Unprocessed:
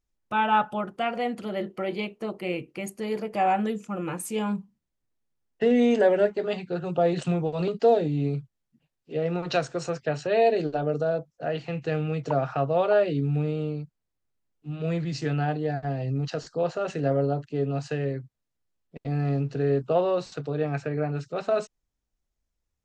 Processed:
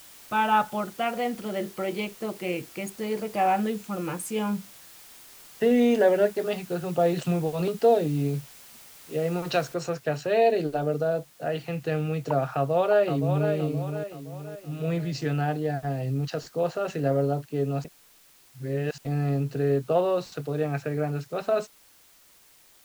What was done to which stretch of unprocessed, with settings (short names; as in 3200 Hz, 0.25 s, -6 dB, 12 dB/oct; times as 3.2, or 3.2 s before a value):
9.74 noise floor step -49 dB -57 dB
12.54–13.51 echo throw 0.52 s, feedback 45%, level -7 dB
17.84–18.98 reverse